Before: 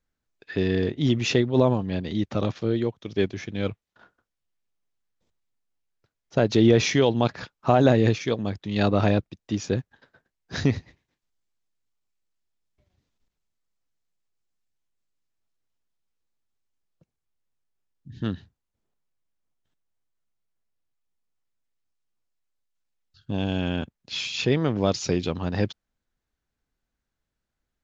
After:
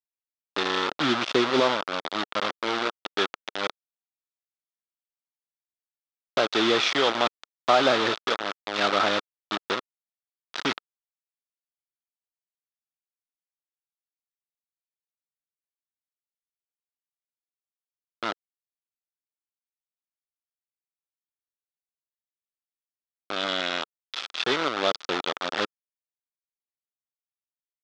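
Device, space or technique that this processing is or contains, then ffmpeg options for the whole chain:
hand-held game console: -filter_complex "[0:a]asettb=1/sr,asplit=3[s0][s1][s2];[s0]atrim=end=1.004[s3];[s1]atrim=start=1:end=1.6,asetpts=PTS-STARTPTS,afade=t=in:d=0.004:c=qsin,afade=t=out:st=0.596:d=0.004:c=qsin,tiltshelf=f=1100:g=6[s4];[s2]atrim=start=1.596[s5];[s3][s4]acrossfade=d=0.004:c1=hsin:c2=qsin[s6];[s6][s5]acrossfade=d=0.004:c1=qsin:c2=hsin,asplit=2[s7][s8];[s8]adelay=114,lowpass=f=2100:p=1,volume=0.0708,asplit=2[s9][s10];[s10]adelay=114,lowpass=f=2100:p=1,volume=0.36[s11];[s7][s9][s11]amix=inputs=3:normalize=0,acrusher=bits=3:mix=0:aa=0.000001,highpass=430,equalizer=f=460:t=q:w=4:g=-3,equalizer=f=1300:t=q:w=4:g=8,equalizer=f=3500:t=q:w=4:g=6,lowpass=f=5100:w=0.5412,lowpass=f=5100:w=1.3066"

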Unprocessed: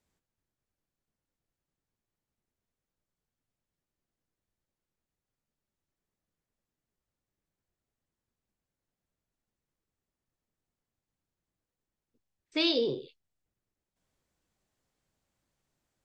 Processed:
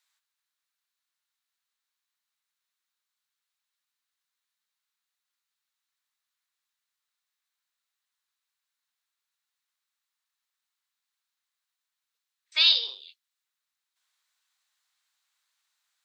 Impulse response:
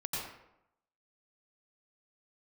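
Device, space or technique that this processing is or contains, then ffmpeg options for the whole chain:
headphones lying on a table: -af "highpass=f=1100:w=0.5412,highpass=f=1100:w=1.3066,equalizer=f=3900:t=o:w=0.38:g=7,volume=2"

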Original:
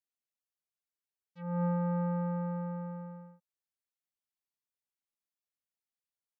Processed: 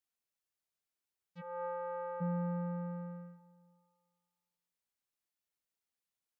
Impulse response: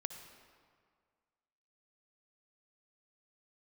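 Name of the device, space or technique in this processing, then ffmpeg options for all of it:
compressed reverb return: -filter_complex "[0:a]asplit=2[s0][s1];[1:a]atrim=start_sample=2205[s2];[s1][s2]afir=irnorm=-1:irlink=0,acompressor=threshold=0.00355:ratio=6,volume=0.708[s3];[s0][s3]amix=inputs=2:normalize=0,asplit=3[s4][s5][s6];[s4]afade=t=out:st=1.4:d=0.02[s7];[s5]highpass=f=420:w=0.5412,highpass=f=420:w=1.3066,afade=t=in:st=1.4:d=0.02,afade=t=out:st=2.2:d=0.02[s8];[s6]afade=t=in:st=2.2:d=0.02[s9];[s7][s8][s9]amix=inputs=3:normalize=0,volume=0.794"

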